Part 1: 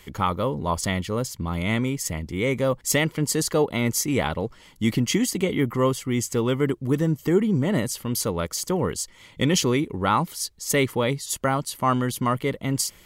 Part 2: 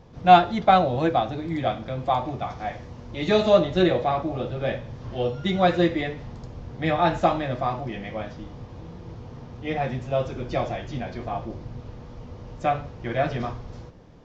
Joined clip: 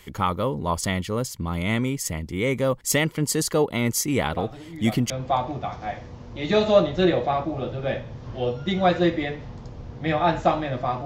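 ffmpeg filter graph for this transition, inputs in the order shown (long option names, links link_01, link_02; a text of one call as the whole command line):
ffmpeg -i cue0.wav -i cue1.wav -filter_complex "[1:a]asplit=2[link_01][link_02];[0:a]apad=whole_dur=11.05,atrim=end=11.05,atrim=end=5.102[link_03];[link_02]atrim=start=1.878:end=7.83[link_04];[link_01]atrim=start=1.11:end=1.88,asetpts=PTS-STARTPTS,volume=-10dB,afade=type=in:duration=0.004:curve=hsin,afade=type=out:start_time=0.766:duration=0.004:curve=hsin,adelay=190953S[link_05];[link_03][link_04]acrossfade=duration=0.004:curve1=hsin:curve2=hsin[link_06];[link_06][link_05]amix=inputs=2:normalize=0" out.wav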